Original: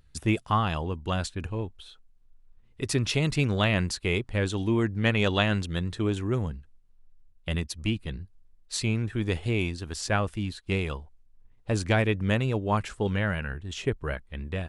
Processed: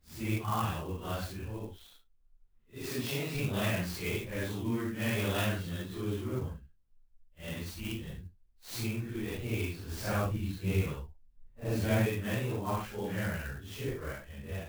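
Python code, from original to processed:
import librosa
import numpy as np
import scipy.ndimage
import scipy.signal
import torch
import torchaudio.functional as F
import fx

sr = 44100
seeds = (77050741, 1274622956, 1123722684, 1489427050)

y = fx.phase_scramble(x, sr, seeds[0], window_ms=200)
y = fx.highpass(y, sr, hz=150.0, slope=12, at=(2.89, 3.35))
y = fx.low_shelf(y, sr, hz=340.0, db=6.0, at=(9.91, 12.06))
y = fx.clock_jitter(y, sr, seeds[1], jitter_ms=0.03)
y = F.gain(torch.from_numpy(y), -7.0).numpy()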